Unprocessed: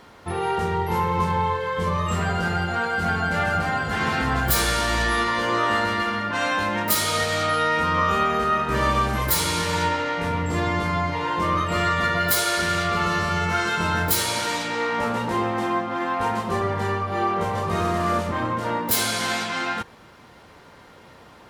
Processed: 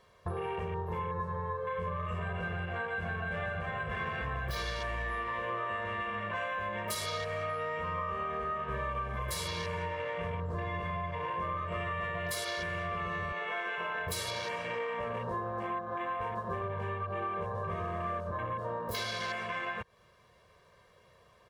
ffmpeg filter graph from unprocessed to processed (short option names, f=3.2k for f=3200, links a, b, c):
-filter_complex "[0:a]asettb=1/sr,asplit=3[a][b][c];[a]atrim=end=13.324[d];[b]atrim=start=13.32:end=14.07,asetpts=PTS-STARTPTS,afade=t=in:d=0.004:c=qsin,afade=t=out:st=0.746:d=0.004:c=qsin,highpass=370,lowpass=4.8k,equalizer=f=800:w=7.8:g=6[e];[c]atrim=start=14.066[f];[d][e]acrossfade=d=0.004:c1=hsin:c2=qsin[g];[g][f]acrossfade=d=0.004:c1=qsin:c2=hsin,afwtdn=0.0355,aecho=1:1:1.8:0.86,acompressor=threshold=-34dB:ratio=6"